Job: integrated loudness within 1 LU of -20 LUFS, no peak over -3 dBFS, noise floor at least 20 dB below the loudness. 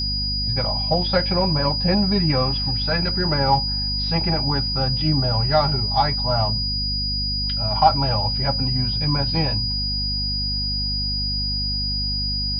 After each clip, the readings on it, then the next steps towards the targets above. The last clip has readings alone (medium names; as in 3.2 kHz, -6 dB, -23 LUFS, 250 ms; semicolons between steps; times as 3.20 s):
hum 50 Hz; highest harmonic 250 Hz; hum level -25 dBFS; steady tone 4.9 kHz; tone level -23 dBFS; loudness -20.5 LUFS; peak level -2.0 dBFS; loudness target -20.0 LUFS
-> de-hum 50 Hz, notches 5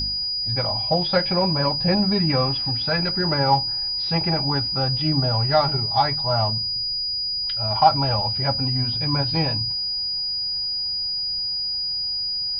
hum not found; steady tone 4.9 kHz; tone level -23 dBFS
-> band-stop 4.9 kHz, Q 30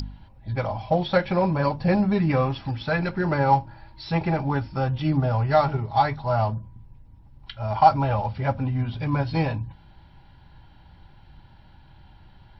steady tone not found; loudness -24.0 LUFS; peak level -3.0 dBFS; loudness target -20.0 LUFS
-> trim +4 dB; peak limiter -3 dBFS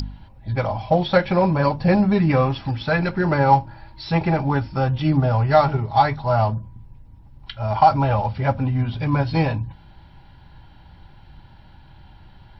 loudness -20.0 LUFS; peak level -3.0 dBFS; noise floor -48 dBFS